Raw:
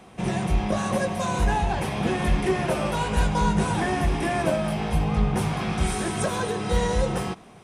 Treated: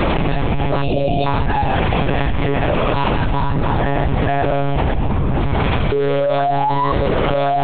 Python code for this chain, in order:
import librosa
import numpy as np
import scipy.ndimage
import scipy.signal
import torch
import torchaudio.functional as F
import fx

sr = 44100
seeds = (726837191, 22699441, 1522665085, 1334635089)

y = fx.spec_box(x, sr, start_s=0.82, length_s=0.44, low_hz=740.0, high_hz=2300.0, gain_db=-26)
y = fx.peak_eq(y, sr, hz=2900.0, db=-4.5, octaves=2.2, at=(3.52, 5.64))
y = fx.spec_paint(y, sr, seeds[0], shape='rise', start_s=5.92, length_s=1.0, low_hz=400.0, high_hz=1100.0, level_db=-17.0)
y = fx.echo_feedback(y, sr, ms=1064, feedback_pct=25, wet_db=-16.0)
y = fx.lpc_monotone(y, sr, seeds[1], pitch_hz=140.0, order=10)
y = fx.env_flatten(y, sr, amount_pct=100)
y = y * 10.0 ** (-1.5 / 20.0)